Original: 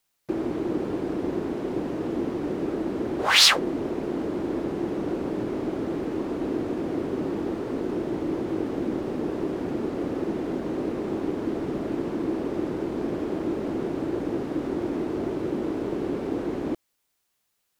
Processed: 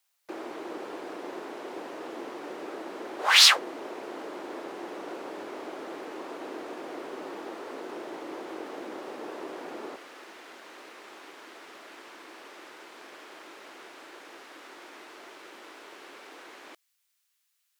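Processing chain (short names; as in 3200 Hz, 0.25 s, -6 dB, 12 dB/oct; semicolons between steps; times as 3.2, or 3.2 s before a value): HPF 700 Hz 12 dB/oct, from 9.96 s 1500 Hz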